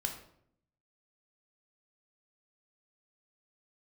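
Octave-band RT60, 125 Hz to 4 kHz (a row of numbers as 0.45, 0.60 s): 1.0, 0.90, 0.75, 0.60, 0.50, 0.45 s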